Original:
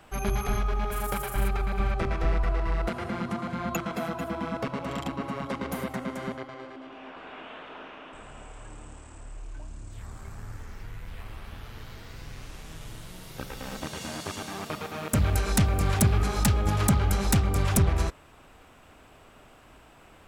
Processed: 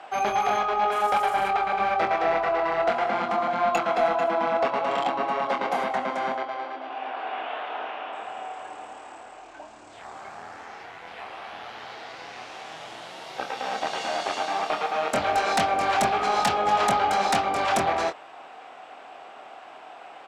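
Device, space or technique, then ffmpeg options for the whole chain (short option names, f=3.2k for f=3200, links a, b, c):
intercom: -filter_complex "[0:a]highpass=470,lowpass=4.5k,equalizer=f=750:t=o:w=0.38:g=11,asoftclip=type=tanh:threshold=-22dB,asplit=2[a][b];[b]adelay=24,volume=-7dB[c];[a][c]amix=inputs=2:normalize=0,volume=7.5dB"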